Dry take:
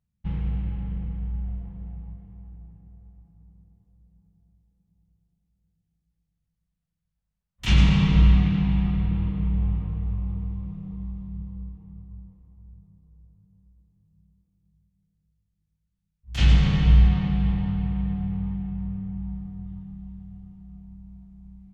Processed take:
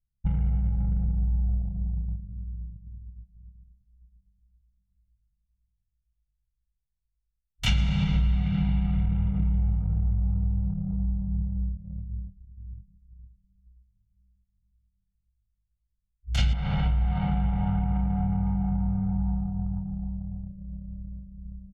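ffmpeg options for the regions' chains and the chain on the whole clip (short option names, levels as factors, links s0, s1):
-filter_complex "[0:a]asettb=1/sr,asplit=3[s0][s1][s2];[s0]atrim=end=16.534[s3];[s1]atrim=start=16.53:end=20.48,asetpts=PTS-STARTPTS,afade=t=in:d=0.004:c=qsin,afade=t=out:st=3.946:d=0.004:c=qsin,lowpass=3900,equalizer=f=920:w=0.83:g=10.5,acompressor=threshold=0.0501:ratio=2:attack=3.2:release=140:knee=1:detection=peak[s4];[s2]atrim=start=20.476[s5];[s3][s4]acrossfade=d=0.004:c1=hsin:c2=qsin[s6];[s6][s5]acrossfade=d=0.004:c1=qsin:c2=hsin,anlmdn=0.398,aecho=1:1:1.4:0.79,acompressor=threshold=0.0562:ratio=6,volume=1.5"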